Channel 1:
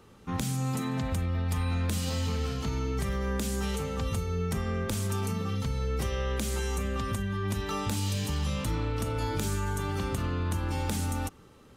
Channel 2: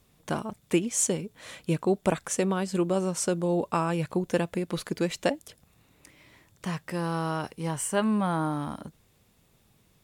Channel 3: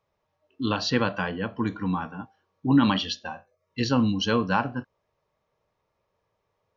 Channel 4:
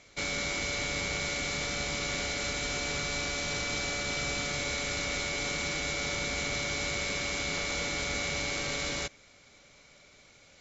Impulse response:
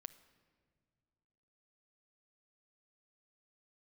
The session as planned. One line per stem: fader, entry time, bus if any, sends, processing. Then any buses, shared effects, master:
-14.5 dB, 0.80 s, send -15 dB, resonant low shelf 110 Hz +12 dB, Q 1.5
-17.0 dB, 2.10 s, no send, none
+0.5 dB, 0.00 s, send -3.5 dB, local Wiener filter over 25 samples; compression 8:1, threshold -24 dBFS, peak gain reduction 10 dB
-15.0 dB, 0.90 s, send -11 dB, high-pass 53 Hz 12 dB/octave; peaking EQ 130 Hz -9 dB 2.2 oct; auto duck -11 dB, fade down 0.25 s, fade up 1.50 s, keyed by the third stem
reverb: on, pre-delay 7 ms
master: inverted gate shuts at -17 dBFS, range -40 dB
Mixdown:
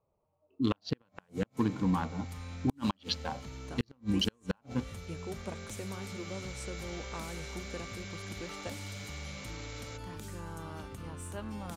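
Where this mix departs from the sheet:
stem 1: missing resonant low shelf 110 Hz +12 dB, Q 1.5; stem 2: entry 2.10 s -> 3.40 s; stem 3: send off

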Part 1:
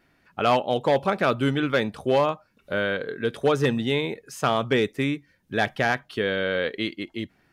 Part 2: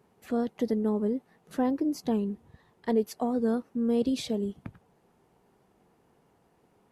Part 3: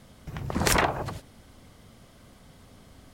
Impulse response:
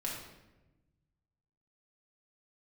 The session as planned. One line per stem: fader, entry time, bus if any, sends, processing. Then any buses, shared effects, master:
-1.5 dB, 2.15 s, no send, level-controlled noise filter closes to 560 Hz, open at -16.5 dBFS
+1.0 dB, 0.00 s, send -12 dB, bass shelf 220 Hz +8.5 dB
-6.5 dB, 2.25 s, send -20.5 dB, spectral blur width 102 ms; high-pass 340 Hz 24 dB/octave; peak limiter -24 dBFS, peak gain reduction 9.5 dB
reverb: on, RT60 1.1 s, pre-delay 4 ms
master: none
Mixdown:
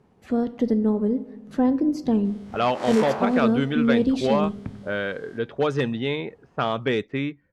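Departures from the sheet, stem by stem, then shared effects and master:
stem 3 -6.5 dB -> +2.0 dB; master: extra distance through air 57 m

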